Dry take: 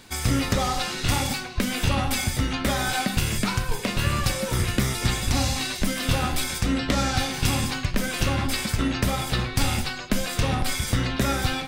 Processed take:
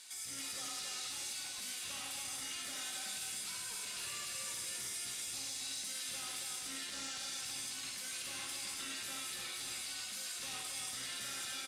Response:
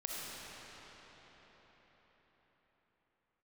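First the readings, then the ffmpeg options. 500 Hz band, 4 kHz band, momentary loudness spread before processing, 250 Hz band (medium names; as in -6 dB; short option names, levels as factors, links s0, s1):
-27.0 dB, -12.0 dB, 3 LU, -31.0 dB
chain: -filter_complex "[0:a]lowpass=f=11000:w=0.5412,lowpass=f=11000:w=1.3066,aderivative,acrossover=split=450[s0][s1];[s1]acompressor=threshold=0.01:ratio=10[s2];[s0][s2]amix=inputs=2:normalize=0,asplit=2[s3][s4];[s4]asoftclip=type=tanh:threshold=0.0112,volume=0.501[s5];[s3][s5]amix=inputs=2:normalize=0,alimiter=level_in=3.16:limit=0.0631:level=0:latency=1:release=37,volume=0.316,lowshelf=f=420:g=-3.5,aecho=1:1:278:0.668[s6];[1:a]atrim=start_sample=2205,afade=t=out:st=0.17:d=0.01,atrim=end_sample=7938[s7];[s6][s7]afir=irnorm=-1:irlink=0,volume=1.12"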